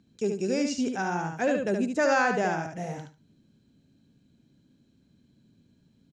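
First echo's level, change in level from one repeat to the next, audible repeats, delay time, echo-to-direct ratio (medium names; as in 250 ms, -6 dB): -5.0 dB, -15.0 dB, 3, 73 ms, -5.0 dB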